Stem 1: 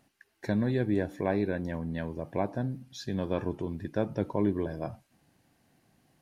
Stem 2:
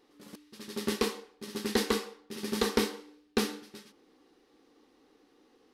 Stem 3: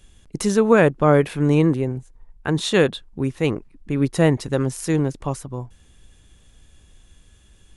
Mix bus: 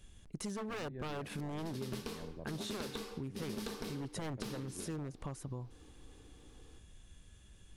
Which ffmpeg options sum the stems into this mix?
-filter_complex "[0:a]lowpass=1.9k,adelay=200,volume=-12.5dB[a];[1:a]aeval=exprs='clip(val(0),-1,0.0299)':c=same,bandreject=f=1.9k:w=11,alimiter=limit=-18dB:level=0:latency=1:release=236,adelay=1050,volume=-0.5dB[b];[2:a]aeval=exprs='0.188*(abs(mod(val(0)/0.188+3,4)-2)-1)':c=same,volume=-7dB[c];[a][c]amix=inputs=2:normalize=0,alimiter=level_in=5dB:limit=-24dB:level=0:latency=1:release=201,volume=-5dB,volume=0dB[d];[b][d]amix=inputs=2:normalize=0,equalizer=f=130:w=0.73:g=3,acompressor=threshold=-38dB:ratio=6"

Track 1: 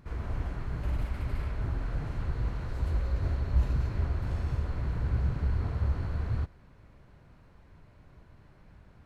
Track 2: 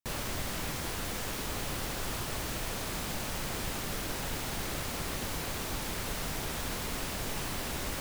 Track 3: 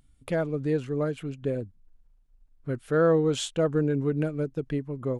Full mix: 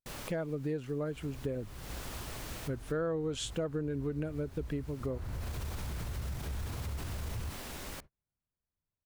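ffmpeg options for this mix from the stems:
-filter_complex "[0:a]adelay=1050,volume=-3.5dB,afade=t=in:st=5.09:d=0.21:silence=0.266073[a];[1:a]volume=-7.5dB[b];[2:a]volume=-3dB,asplit=2[c][d];[d]apad=whole_len=352904[e];[b][e]sidechaincompress=threshold=-45dB:ratio=12:attack=8.5:release=300[f];[a][f]amix=inputs=2:normalize=0,alimiter=level_in=6dB:limit=-24dB:level=0:latency=1:release=29,volume=-6dB,volume=0dB[g];[c][g]amix=inputs=2:normalize=0,agate=range=-35dB:threshold=-49dB:ratio=16:detection=peak,acompressor=threshold=-32dB:ratio=4"

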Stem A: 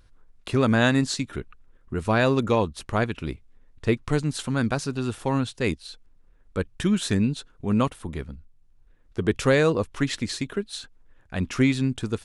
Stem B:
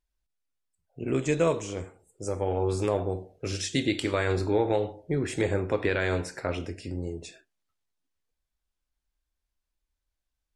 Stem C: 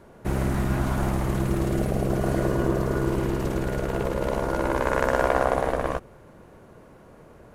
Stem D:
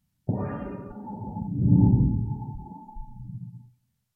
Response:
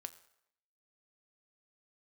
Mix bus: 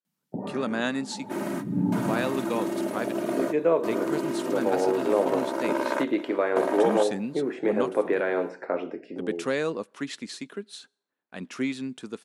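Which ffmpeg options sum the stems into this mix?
-filter_complex "[0:a]agate=range=-33dB:threshold=-42dB:ratio=3:detection=peak,volume=-8.5dB,asplit=3[a][b][c];[b]volume=-11dB[d];[1:a]aemphasis=mode=reproduction:type=75fm,dynaudnorm=f=430:g=5:m=11dB,bandpass=f=650:t=q:w=0.56:csg=0,adelay=2250,volume=-7dB,asplit=2[e][f];[f]volume=-14dB[g];[2:a]aecho=1:1:3.2:0.71,adelay=1050,volume=-5dB,asplit=2[h][i];[i]volume=-17dB[j];[3:a]adelay=50,volume=-2dB[k];[c]apad=whole_len=379206[l];[h][l]sidechaingate=range=-33dB:threshold=-57dB:ratio=16:detection=peak[m];[4:a]atrim=start_sample=2205[n];[d][g][j]amix=inputs=3:normalize=0[o];[o][n]afir=irnorm=-1:irlink=0[p];[a][e][m][k][p]amix=inputs=5:normalize=0,highpass=f=190:w=0.5412,highpass=f=190:w=1.3066"

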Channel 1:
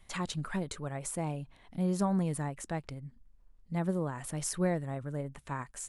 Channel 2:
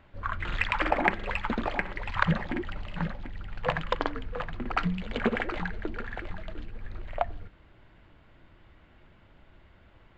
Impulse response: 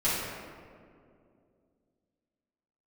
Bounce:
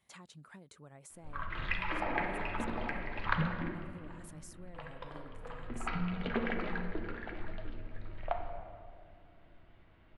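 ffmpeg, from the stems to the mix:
-filter_complex "[0:a]highpass=110,acompressor=threshold=-40dB:ratio=6,volume=-10.5dB,asplit=2[a][b];[1:a]lowpass=f=5.2k:w=0.5412,lowpass=f=5.2k:w=1.3066,adelay=1100,volume=2dB,afade=t=out:st=3.34:d=0.7:silence=0.281838,afade=t=in:st=5.21:d=0.55:silence=0.298538,asplit=2[c][d];[d]volume=-13dB[e];[b]apad=whole_len=497374[f];[c][f]sidechaincompress=threshold=-55dB:ratio=8:attack=6.1:release=217[g];[2:a]atrim=start_sample=2205[h];[e][h]afir=irnorm=-1:irlink=0[i];[a][g][i]amix=inputs=3:normalize=0"

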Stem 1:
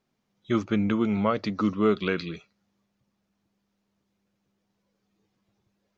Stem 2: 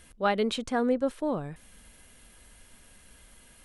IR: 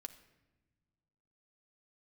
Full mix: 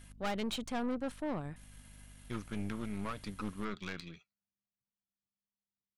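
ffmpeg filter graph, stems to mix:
-filter_complex "[0:a]agate=range=-12dB:threshold=-43dB:ratio=16:detection=peak,equalizer=f=440:w=0.88:g=-10,aeval=exprs='(tanh(14.1*val(0)+0.75)-tanh(0.75))/14.1':c=same,adelay=1800,volume=-4.5dB[a];[1:a]equalizer=f=440:t=o:w=0.49:g=-9,aeval=exprs='val(0)+0.00316*(sin(2*PI*50*n/s)+sin(2*PI*2*50*n/s)/2+sin(2*PI*3*50*n/s)/3+sin(2*PI*4*50*n/s)/4+sin(2*PI*5*50*n/s)/5)':c=same,volume=-1.5dB[b];[a][b]amix=inputs=2:normalize=0,aeval=exprs='(tanh(39.8*val(0)+0.6)-tanh(0.6))/39.8':c=same"

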